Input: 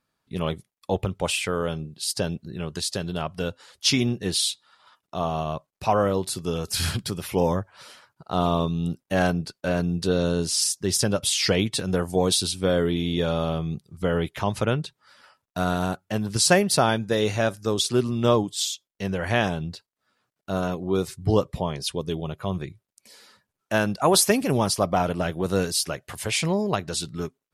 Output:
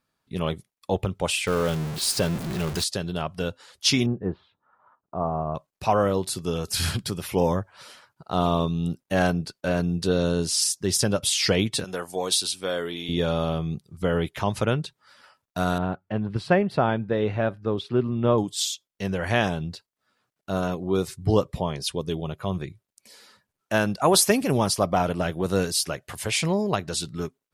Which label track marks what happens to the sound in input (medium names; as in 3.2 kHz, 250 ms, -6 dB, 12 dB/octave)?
1.470000	2.840000	jump at every zero crossing of -27 dBFS
4.060000	5.550000	low-pass 1.3 kHz 24 dB/octave
11.840000	13.090000	high-pass 820 Hz 6 dB/octave
15.780000	18.380000	distance through air 480 m